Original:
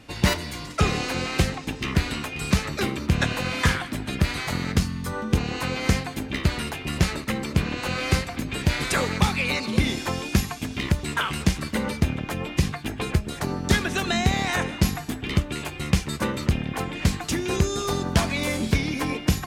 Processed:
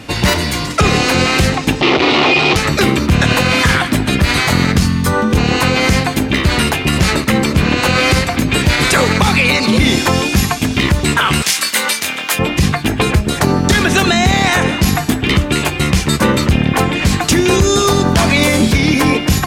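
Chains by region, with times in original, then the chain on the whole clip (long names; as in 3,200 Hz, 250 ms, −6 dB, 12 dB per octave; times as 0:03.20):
0:01.81–0:02.56: sign of each sample alone + loudspeaker in its box 200–4,100 Hz, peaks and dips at 210 Hz −9 dB, 360 Hz +8 dB, 780 Hz +4 dB, 1,600 Hz −10 dB
0:11.42–0:12.39: high-pass filter 1,300 Hz 6 dB per octave + spectral tilt +2.5 dB per octave + double-tracking delay 23 ms −7.5 dB
whole clip: high-pass filter 49 Hz; boost into a limiter +17 dB; level −1 dB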